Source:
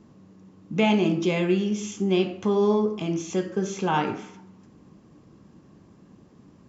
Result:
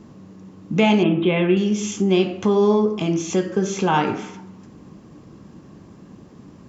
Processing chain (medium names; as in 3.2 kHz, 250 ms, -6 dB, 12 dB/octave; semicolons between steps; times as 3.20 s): 1.03–1.57 s: steep low-pass 3.6 kHz 72 dB/octave; in parallel at 0 dB: compression, threshold -30 dBFS, peak gain reduction 12.5 dB; on the sum: trim +2.5 dB